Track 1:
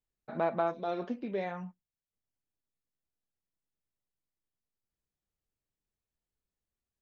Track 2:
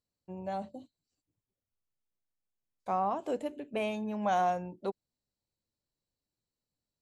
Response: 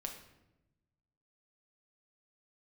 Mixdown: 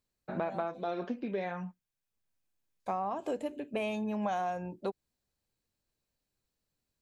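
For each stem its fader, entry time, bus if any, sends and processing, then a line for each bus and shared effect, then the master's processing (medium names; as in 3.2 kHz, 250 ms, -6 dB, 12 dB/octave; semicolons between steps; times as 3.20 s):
+2.0 dB, 0.00 s, no send, none
+2.5 dB, 0.00 s, no send, band-stop 1.5 kHz, Q 25; auto duck -17 dB, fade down 1.40 s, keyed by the first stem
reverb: none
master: small resonant body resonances 1.6/2.5 kHz, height 7 dB; compression, threshold -30 dBFS, peak gain reduction 8 dB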